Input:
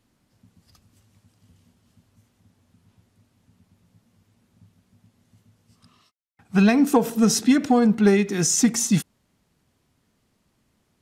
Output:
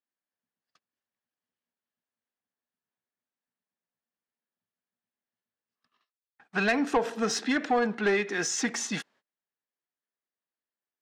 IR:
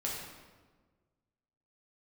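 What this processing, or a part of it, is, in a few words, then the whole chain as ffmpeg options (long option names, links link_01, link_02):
intercom: -af "highpass=460,lowpass=4100,equalizer=frequency=1700:width_type=o:width=0.28:gain=8,asoftclip=type=tanh:threshold=-17.5dB,agate=range=-26dB:threshold=-58dB:ratio=16:detection=peak"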